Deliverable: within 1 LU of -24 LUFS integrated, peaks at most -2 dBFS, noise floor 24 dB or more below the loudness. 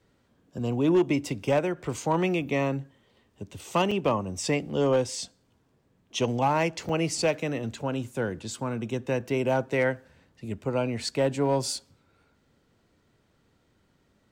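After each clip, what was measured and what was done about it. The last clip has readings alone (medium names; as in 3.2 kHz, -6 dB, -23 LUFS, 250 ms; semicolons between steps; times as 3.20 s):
clipped samples 0.3%; clipping level -16.0 dBFS; dropouts 2; longest dropout 4.7 ms; loudness -27.5 LUFS; peak level -16.0 dBFS; loudness target -24.0 LUFS
-> clip repair -16 dBFS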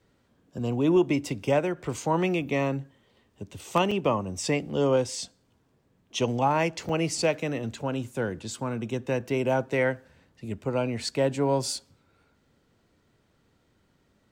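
clipped samples 0.0%; dropouts 2; longest dropout 4.7 ms
-> interpolate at 3.91/6.89 s, 4.7 ms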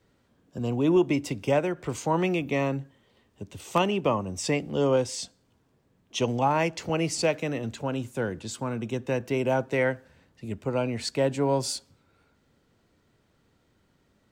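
dropouts 0; loudness -27.5 LUFS; peak level -8.0 dBFS; loudness target -24.0 LUFS
-> trim +3.5 dB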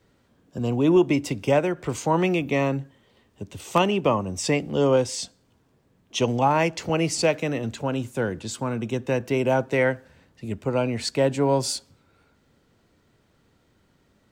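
loudness -24.0 LUFS; peak level -4.5 dBFS; noise floor -64 dBFS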